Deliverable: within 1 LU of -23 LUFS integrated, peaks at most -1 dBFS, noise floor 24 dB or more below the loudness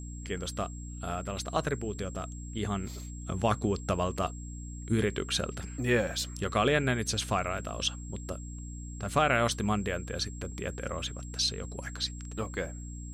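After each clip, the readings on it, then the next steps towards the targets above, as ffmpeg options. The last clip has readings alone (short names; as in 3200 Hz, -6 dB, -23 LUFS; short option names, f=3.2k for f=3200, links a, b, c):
hum 60 Hz; harmonics up to 300 Hz; hum level -38 dBFS; steady tone 7600 Hz; tone level -49 dBFS; loudness -32.0 LUFS; peak -12.0 dBFS; loudness target -23.0 LUFS
-> -af "bandreject=f=60:t=h:w=6,bandreject=f=120:t=h:w=6,bandreject=f=180:t=h:w=6,bandreject=f=240:t=h:w=6,bandreject=f=300:t=h:w=6"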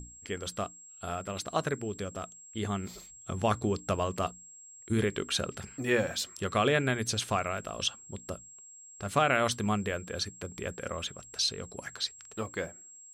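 hum none; steady tone 7600 Hz; tone level -49 dBFS
-> -af "bandreject=f=7.6k:w=30"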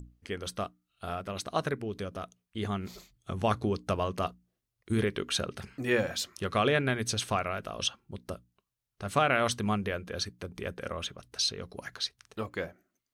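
steady tone none; loudness -32.5 LUFS; peak -12.0 dBFS; loudness target -23.0 LUFS
-> -af "volume=9.5dB"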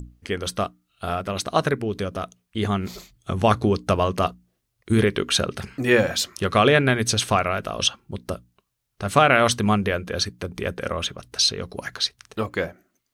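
loudness -23.0 LUFS; peak -2.5 dBFS; noise floor -76 dBFS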